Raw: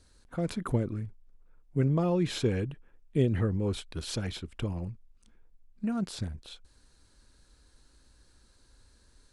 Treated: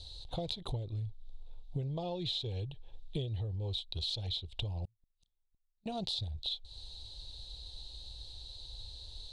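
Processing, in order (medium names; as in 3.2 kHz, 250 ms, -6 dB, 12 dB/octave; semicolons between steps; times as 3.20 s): FFT filter 110 Hz 0 dB, 230 Hz -19 dB, 370 Hz -10 dB, 820 Hz -1 dB, 1.4 kHz -26 dB, 2.2 kHz -14 dB, 3.8 kHz +15 dB, 5.4 kHz -5 dB, 8.2 kHz -10 dB, 13 kHz -16 dB; compression 16:1, threshold -46 dBFS, peak gain reduction 22 dB; 4.85–5.86 s: inverted gate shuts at -52 dBFS, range -36 dB; trim +12 dB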